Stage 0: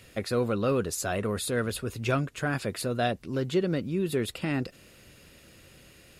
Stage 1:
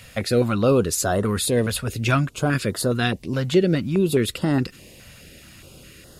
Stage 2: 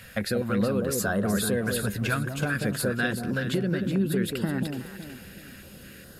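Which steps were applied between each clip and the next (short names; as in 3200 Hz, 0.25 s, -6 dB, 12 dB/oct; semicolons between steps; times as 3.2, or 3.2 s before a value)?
stepped notch 4.8 Hz 350–2400 Hz; gain +9 dB
compressor, threshold -23 dBFS, peak gain reduction 10.5 dB; thirty-one-band EQ 200 Hz +9 dB, 500 Hz +3 dB, 1600 Hz +12 dB, 6300 Hz -3 dB, 12500 Hz +7 dB; echo with dull and thin repeats by turns 0.186 s, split 850 Hz, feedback 59%, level -4 dB; gain -4 dB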